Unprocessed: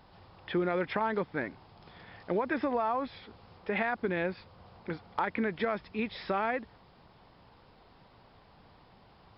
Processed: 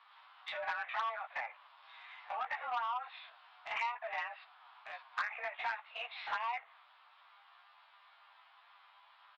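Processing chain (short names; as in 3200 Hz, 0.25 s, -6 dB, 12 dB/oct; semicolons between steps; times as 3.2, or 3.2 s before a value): stepped spectrum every 50 ms; mistuned SSB +240 Hz 540–3400 Hz; high shelf 2800 Hz +10 dB; envelope flanger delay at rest 11.1 ms, full sweep at -27 dBFS; doubler 15 ms -8 dB; treble ducked by the level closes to 2000 Hz, closed at -36.5 dBFS; core saturation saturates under 1700 Hz; gain +1 dB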